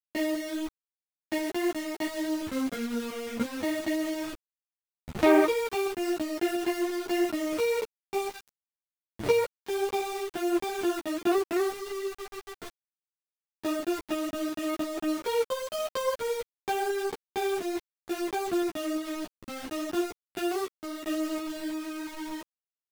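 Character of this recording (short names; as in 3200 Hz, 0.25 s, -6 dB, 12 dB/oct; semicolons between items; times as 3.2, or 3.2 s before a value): tremolo saw up 2.9 Hz, depth 35%; a quantiser's noise floor 6-bit, dither none; a shimmering, thickened sound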